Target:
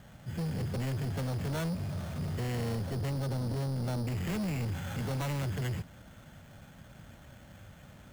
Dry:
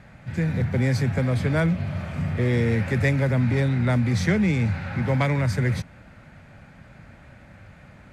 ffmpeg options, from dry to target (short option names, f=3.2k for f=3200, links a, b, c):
-af "asetnsamples=n=441:p=0,asendcmd='2.75 lowpass f 1100;4.07 lowpass f 2400',lowpass=2k,acrusher=samples=9:mix=1:aa=0.000001,asoftclip=type=tanh:threshold=-26dB,volume=-4.5dB"